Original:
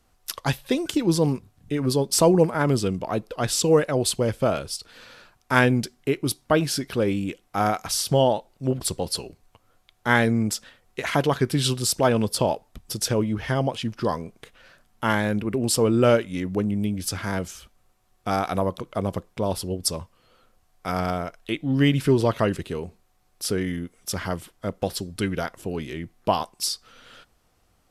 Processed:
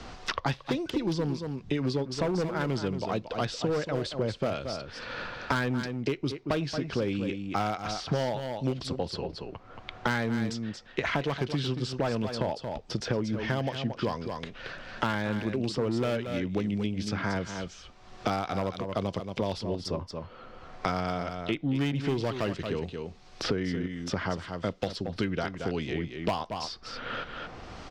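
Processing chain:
low-pass filter 5,500 Hz 24 dB per octave
gain into a clipping stage and back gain 16 dB
on a send: single-tap delay 227 ms −10.5 dB
on the sum: multiband upward and downward compressor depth 100%
level −6.5 dB

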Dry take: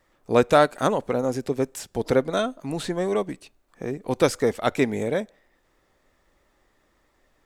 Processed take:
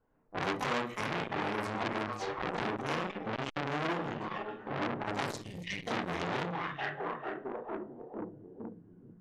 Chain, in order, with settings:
pitch-shifted copies added +12 semitones −5 dB
low-pass that shuts in the quiet parts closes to 1,300 Hz, open at −18.5 dBFS
speed change −19%
echo through a band-pass that steps 446 ms, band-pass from 2,600 Hz, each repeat −0.7 octaves, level −5 dB
downward compressor 10 to 1, threshold −25 dBFS, peak gain reduction 14 dB
gain on a spectral selection 0:05.42–0:05.85, 210–1,800 Hz −28 dB
dynamic equaliser 490 Hz, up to −4 dB, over −40 dBFS, Q 1.5
noise gate −38 dBFS, range −10 dB
on a send at −1 dB: convolution reverb RT60 0.40 s, pre-delay 19 ms
on the sum: saturating transformer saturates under 2,500 Hz

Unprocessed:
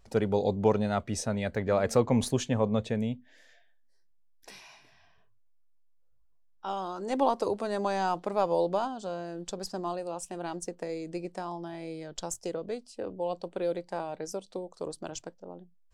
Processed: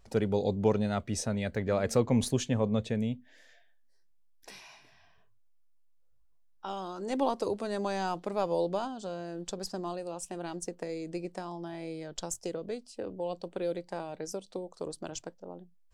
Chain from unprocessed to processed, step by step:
dynamic equaliser 900 Hz, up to −5 dB, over −40 dBFS, Q 0.8

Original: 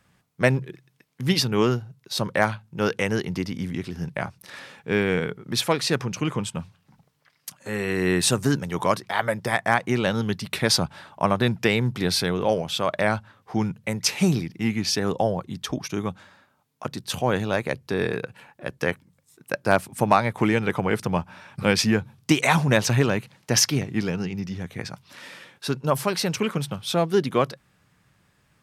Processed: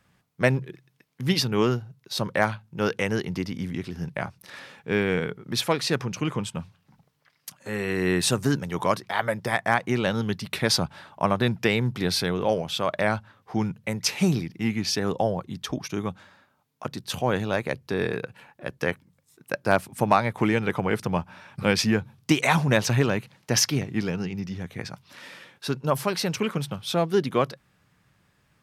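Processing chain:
parametric band 8,400 Hz −2.5 dB
level −1.5 dB

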